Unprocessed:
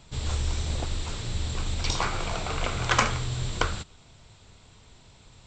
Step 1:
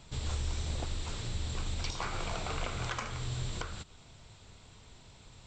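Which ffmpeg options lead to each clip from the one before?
ffmpeg -i in.wav -filter_complex "[0:a]asplit=2[link_01][link_02];[link_02]acompressor=threshold=-36dB:ratio=6,volume=2.5dB[link_03];[link_01][link_03]amix=inputs=2:normalize=0,alimiter=limit=-13.5dB:level=0:latency=1:release=278,volume=-9dB" out.wav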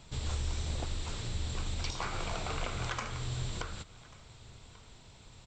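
ffmpeg -i in.wav -af "aecho=1:1:1139:0.0794" out.wav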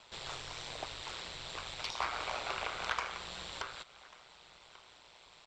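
ffmpeg -i in.wav -filter_complex "[0:a]acrossover=split=470 5600:gain=0.0708 1 0.178[link_01][link_02][link_03];[link_01][link_02][link_03]amix=inputs=3:normalize=0,aeval=exprs='0.0841*(cos(1*acos(clip(val(0)/0.0841,-1,1)))-cos(1*PI/2))+0.00266*(cos(6*acos(clip(val(0)/0.0841,-1,1)))-cos(6*PI/2))':channel_layout=same,aeval=exprs='val(0)*sin(2*PI*60*n/s)':channel_layout=same,volume=5.5dB" out.wav

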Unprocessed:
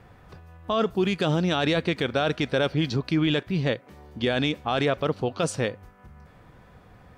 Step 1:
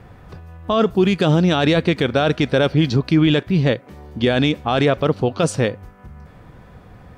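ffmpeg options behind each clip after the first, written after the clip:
ffmpeg -i in.wav -af "lowshelf=frequency=490:gain=4.5,volume=5dB" out.wav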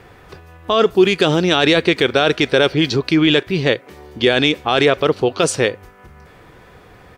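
ffmpeg -i in.wav -af "firequalizer=gain_entry='entry(220,0);entry(380,11);entry(560,6);entry(2100,12)':delay=0.05:min_phase=1,volume=-5dB" out.wav

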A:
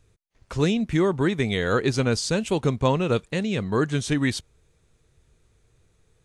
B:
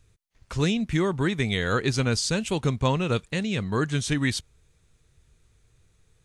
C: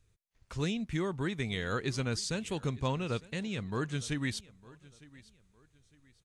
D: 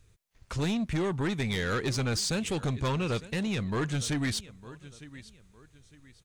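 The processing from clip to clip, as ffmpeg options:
ffmpeg -i in.wav -af "equalizer=frequency=470:width_type=o:width=2.5:gain=-6,volume=1.5dB" out.wav
ffmpeg -i in.wav -af "aecho=1:1:907|1814:0.0841|0.0261,volume=-9dB" out.wav
ffmpeg -i in.wav -af "asoftclip=type=tanh:threshold=-33dB,volume=8.5dB" out.wav

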